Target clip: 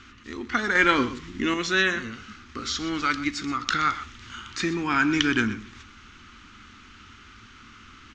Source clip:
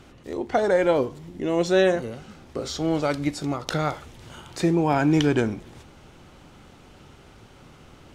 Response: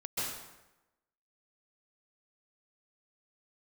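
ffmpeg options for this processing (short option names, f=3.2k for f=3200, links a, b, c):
-filter_complex "[0:a]firequalizer=gain_entry='entry(100,0);entry(150,-13);entry(220,3);entry(530,-17);entry(760,-14);entry(1200,9);entry(6400,2);entry(9900,-21)':delay=0.05:min_phase=1,asettb=1/sr,asplit=3[a][b][c];[a]atrim=end=0.754[d];[b]atrim=start=0.75:end=1.54,asetpts=PTS-STARTPTS,afade=t=in:d=0.004:c=qsin,afade=t=out:st=0.786:d=0.004:c=qsin,acontrast=51[e];[c]atrim=start=1.536[f];[d][e]acrossfade=d=0.004:c1=hsin:c2=qsin[g];[g][f]acrossfade=d=0.004:c1=qsin:c2=hsin,equalizer=f=7.1k:t=o:w=0.48:g=4,bandreject=f=600:w=12,asplit=2[h][i];[i]aecho=0:1:124:0.178[j];[h][j]amix=inputs=2:normalize=0,volume=-1dB"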